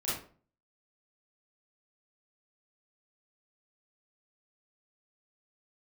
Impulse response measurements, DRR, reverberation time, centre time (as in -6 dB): -10.0 dB, 0.40 s, 56 ms